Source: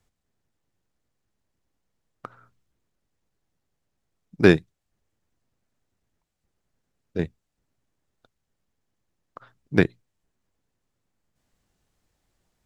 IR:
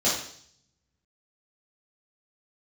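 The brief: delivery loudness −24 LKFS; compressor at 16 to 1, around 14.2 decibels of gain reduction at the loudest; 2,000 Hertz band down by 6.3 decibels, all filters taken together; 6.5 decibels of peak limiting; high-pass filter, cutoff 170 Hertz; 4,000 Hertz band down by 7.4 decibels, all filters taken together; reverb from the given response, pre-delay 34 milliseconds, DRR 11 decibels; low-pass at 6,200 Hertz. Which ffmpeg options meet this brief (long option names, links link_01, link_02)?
-filter_complex "[0:a]highpass=170,lowpass=6200,equalizer=frequency=2000:width_type=o:gain=-7,equalizer=frequency=4000:width_type=o:gain=-6,acompressor=threshold=-24dB:ratio=16,alimiter=limit=-18dB:level=0:latency=1,asplit=2[link_01][link_02];[1:a]atrim=start_sample=2205,adelay=34[link_03];[link_02][link_03]afir=irnorm=-1:irlink=0,volume=-24.5dB[link_04];[link_01][link_04]amix=inputs=2:normalize=0,volume=13dB"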